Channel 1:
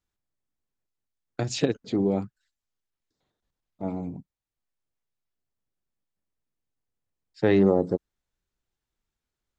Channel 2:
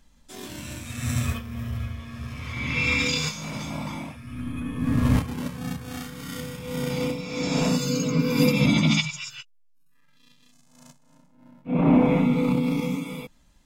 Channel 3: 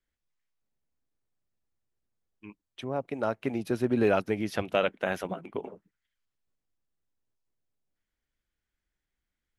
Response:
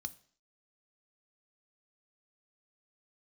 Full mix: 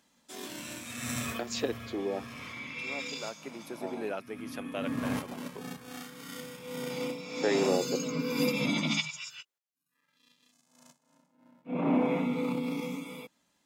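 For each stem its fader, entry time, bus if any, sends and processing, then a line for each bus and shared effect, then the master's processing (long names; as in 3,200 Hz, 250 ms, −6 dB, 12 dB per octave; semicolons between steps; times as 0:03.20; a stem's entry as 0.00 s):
−4.0 dB, 0.00 s, no send, high-pass filter 350 Hz
0:02.42 −2 dB → 0:02.75 −13.5 dB → 0:03.98 −13.5 dB → 0:04.39 −6 dB, 0.00 s, no send, no processing
−11.0 dB, 0.00 s, no send, high-shelf EQ 6,900 Hz +12 dB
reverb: not used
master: high-pass filter 250 Hz 12 dB per octave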